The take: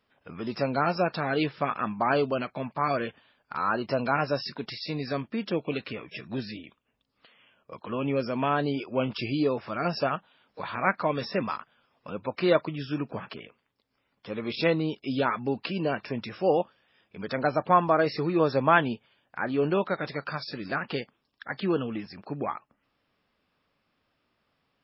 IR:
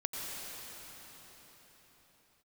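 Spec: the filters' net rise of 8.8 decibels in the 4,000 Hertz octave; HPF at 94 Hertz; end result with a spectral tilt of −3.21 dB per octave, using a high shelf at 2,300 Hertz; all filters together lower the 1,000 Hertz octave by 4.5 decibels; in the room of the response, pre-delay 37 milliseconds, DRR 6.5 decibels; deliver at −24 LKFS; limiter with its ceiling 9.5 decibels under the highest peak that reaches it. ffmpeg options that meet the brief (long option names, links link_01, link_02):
-filter_complex "[0:a]highpass=94,equalizer=frequency=1000:width_type=o:gain=-8,highshelf=frequency=2300:gain=6,equalizer=frequency=4000:width_type=o:gain=6,alimiter=limit=-16dB:level=0:latency=1,asplit=2[link_01][link_02];[1:a]atrim=start_sample=2205,adelay=37[link_03];[link_02][link_03]afir=irnorm=-1:irlink=0,volume=-10.5dB[link_04];[link_01][link_04]amix=inputs=2:normalize=0,volume=5.5dB"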